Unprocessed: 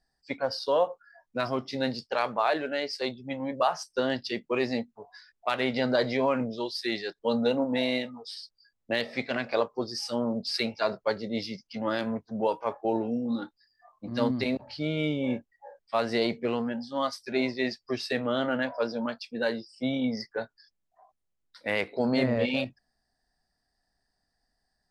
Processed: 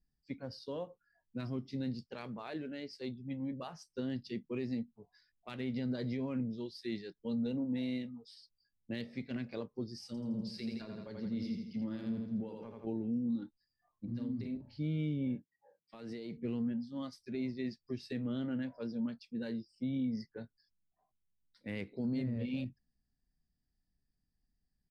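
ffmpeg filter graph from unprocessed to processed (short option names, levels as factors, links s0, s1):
-filter_complex "[0:a]asettb=1/sr,asplit=3[s0][s1][s2];[s0]atrim=end=10.064[s3];[s1]atrim=start=10.06:end=12.87,asetpts=PTS-STARTPTS,afade=t=in:d=0.004:c=qsin,afade=t=out:st=2.806:d=0.004:c=qsin,aecho=1:1:82|164|246|328|410|492:0.531|0.255|0.122|0.0587|0.0282|0.0135,atrim=end_sample=123921,acompressor=threshold=0.0398:ratio=5:attack=3.2:release=140:knee=1:detection=peak,asplit=2[s4][s5];[s5]adelay=31,volume=0.211[s6];[s4][s6]amix=inputs=2:normalize=0,atrim=end_sample=123921[s7];[s2]atrim=start=12.866[s8];[s3][s7]acrossfade=d=0.004:c1=hsin:c2=qsin[s9];[s9][s8]acrossfade=d=0.004:c1=qsin:c2=hsin,asettb=1/sr,asplit=3[s10][s11][s12];[s10]atrim=end=14.054[s13];[s11]atrim=start=14.05:end=14.78,asetpts=PTS-STARTPTS,afade=t=in:d=0.004:c=qsin,afade=t=out:st=0.726:d=0.004:c=qsin,acompressor=threshold=0.0178:ratio=2.5:attack=3.2:release=140:knee=1:detection=peak,asplit=2[s14][s15];[s15]adelay=43,volume=0.501[s16];[s14][s16]amix=inputs=2:normalize=0,atrim=end_sample=32193,adynamicequalizer=threshold=0.00251:dfrequency=1700:dqfactor=0.7:tfrequency=1700:tqfactor=0.7:attack=5:release=100:ratio=0.375:range=2.5:mode=cutabove:tftype=highshelf[s17];[s12]atrim=start=14.776[s18];[s13][s17]acrossfade=d=0.004:c1=hsin:c2=qsin[s19];[s19][s18]acrossfade=d=0.004:c1=qsin:c2=hsin,asettb=1/sr,asplit=3[s20][s21][s22];[s20]atrim=end=15.354[s23];[s21]atrim=start=15.35:end=16.37,asetpts=PTS-STARTPTS,afade=t=in:d=0.004:c=qsin,afade=t=out:st=1.016:d=0.004:c=qsin,highpass=160,aecho=1:1:6.4:0.32,atrim=end_sample=44982,acompressor=threshold=0.0316:ratio=5:attack=3.2:release=140:knee=1:detection=peak[s24];[s22]atrim=start=16.366[s25];[s23][s24]acrossfade=d=0.004:c1=hsin:c2=qsin[s26];[s26][s25]acrossfade=d=0.004:c1=qsin:c2=hsin,firequalizer=gain_entry='entry(180,0);entry(640,-22);entry(1300,-21);entry(2100,-16)':delay=0.05:min_phase=1,alimiter=level_in=1.68:limit=0.0631:level=0:latency=1:release=117,volume=0.596"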